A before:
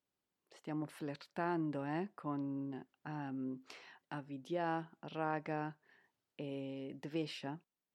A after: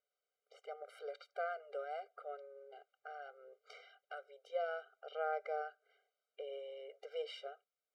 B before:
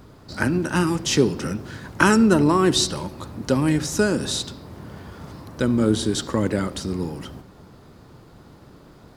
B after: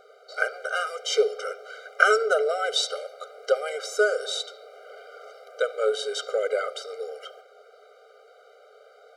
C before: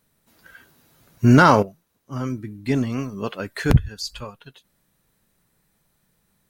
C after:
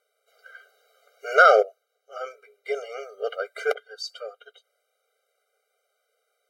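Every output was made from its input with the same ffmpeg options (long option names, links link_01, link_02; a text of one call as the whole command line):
ffmpeg -i in.wav -af "aemphasis=mode=reproduction:type=50kf,afftfilt=real='re*eq(mod(floor(b*sr/1024/400),2),1)':imag='im*eq(mod(floor(b*sr/1024/400),2),1)':win_size=1024:overlap=0.75,volume=3dB" out.wav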